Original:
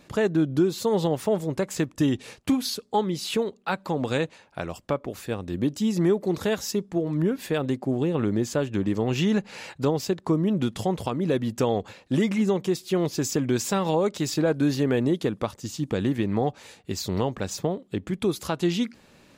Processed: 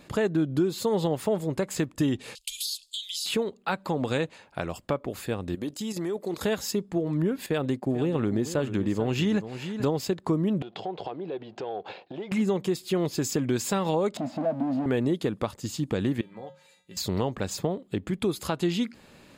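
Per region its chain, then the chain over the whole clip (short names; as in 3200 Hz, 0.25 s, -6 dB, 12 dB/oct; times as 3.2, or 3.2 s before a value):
2.35–3.26 inverse Chebyshev band-stop 100–1000 Hz, stop band 60 dB + band shelf 6000 Hz +14 dB 2.7 oct + compressor, threshold -30 dBFS
5.55–6.43 level quantiser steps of 9 dB + tone controls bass -9 dB, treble +5 dB
7.46–10.11 gate -39 dBFS, range -9 dB + echo 0.44 s -13 dB
10.62–12.32 sample leveller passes 1 + compressor 20:1, threshold -32 dBFS + speaker cabinet 230–4200 Hz, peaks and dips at 240 Hz -10 dB, 390 Hz +6 dB, 750 Hz +9 dB, 1200 Hz -4 dB, 1900 Hz -5 dB
14.17–14.86 zero-crossing step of -31 dBFS + sample leveller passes 3 + double band-pass 400 Hz, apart 1.4 oct
16.21–16.97 low shelf 340 Hz -6 dB + notches 50/100/150/200 Hz + resonator 180 Hz, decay 0.38 s, harmonics odd, mix 90%
whole clip: compressor 1.5:1, threshold -31 dBFS; notch 5800 Hz, Q 7.6; gain +2 dB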